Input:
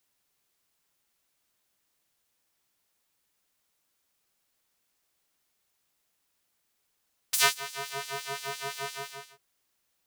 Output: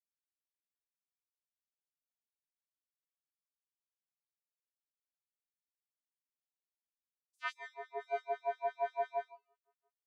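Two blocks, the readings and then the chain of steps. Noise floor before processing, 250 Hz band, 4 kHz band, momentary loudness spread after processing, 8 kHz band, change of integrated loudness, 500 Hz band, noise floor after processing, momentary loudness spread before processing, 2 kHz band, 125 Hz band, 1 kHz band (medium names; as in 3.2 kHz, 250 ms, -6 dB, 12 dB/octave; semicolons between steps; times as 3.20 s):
-77 dBFS, no reading, -24.0 dB, 9 LU, under -35 dB, -9.0 dB, +1.5 dB, under -85 dBFS, 15 LU, -12.5 dB, under -30 dB, -2.0 dB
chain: reverse; compression 5:1, threshold -43 dBFS, peak gain reduction 23.5 dB; reverse; multi-tap echo 135/140/217/264/677 ms -19.5/-10/-10.5/-19/-9 dB; spectral contrast expander 4:1; trim +2 dB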